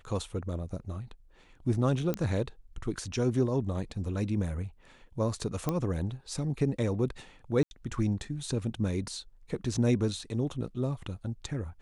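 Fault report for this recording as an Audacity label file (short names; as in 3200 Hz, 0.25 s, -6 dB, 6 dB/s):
2.140000	2.140000	pop -17 dBFS
5.690000	5.690000	pop -16 dBFS
7.630000	7.710000	gap 81 ms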